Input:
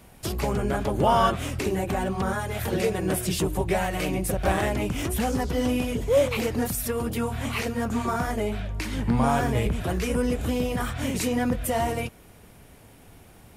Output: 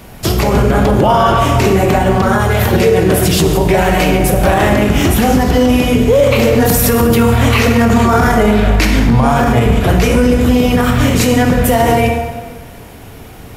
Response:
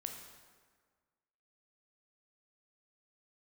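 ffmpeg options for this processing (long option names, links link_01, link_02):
-filter_complex "[0:a]equalizer=frequency=9200:width=2.5:gain=-6.5,asettb=1/sr,asplit=3[link_01][link_02][link_03];[link_01]atrim=end=6.594[link_04];[link_02]atrim=start=6.59:end=8.87,asetpts=PTS-STARTPTS,afade=type=in:duration=0.004:curve=qsin,afade=type=out:start_time=2.276:duration=0.004:curve=qsin,acontrast=56[link_05];[link_03]atrim=start=8.866[link_06];[link_04][link_05]acrossfade=duration=0.004:curve1=hsin:curve2=qsin[link_07];[link_07][link_06]acrossfade=duration=0.004:curve1=qsin:curve2=hsin[link_08];[1:a]atrim=start_sample=2205[link_09];[link_08][link_09]afir=irnorm=-1:irlink=0,alimiter=level_in=20dB:limit=-1dB:release=50:level=0:latency=1,volume=-1dB"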